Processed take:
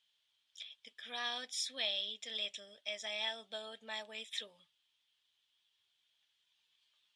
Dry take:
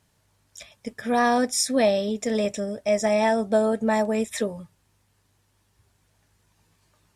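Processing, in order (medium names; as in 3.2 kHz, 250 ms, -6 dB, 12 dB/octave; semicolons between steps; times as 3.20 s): band-pass filter 3.3 kHz, Q 7; trim +5 dB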